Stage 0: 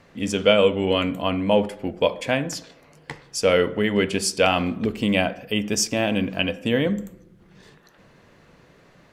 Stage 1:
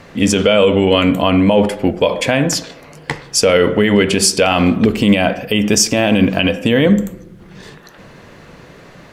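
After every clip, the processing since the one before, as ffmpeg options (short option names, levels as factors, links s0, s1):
-af "alimiter=level_in=5.31:limit=0.891:release=50:level=0:latency=1,volume=0.891"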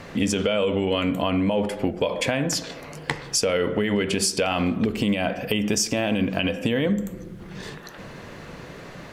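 -af "acompressor=threshold=0.0708:ratio=3"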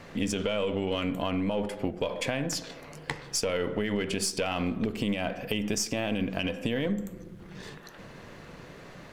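-af "aeval=exprs='if(lt(val(0),0),0.708*val(0),val(0))':c=same,volume=0.531"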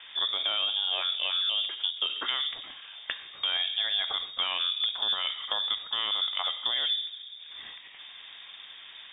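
-af "lowpass=f=3100:t=q:w=0.5098,lowpass=f=3100:t=q:w=0.6013,lowpass=f=3100:t=q:w=0.9,lowpass=f=3100:t=q:w=2.563,afreqshift=-3700"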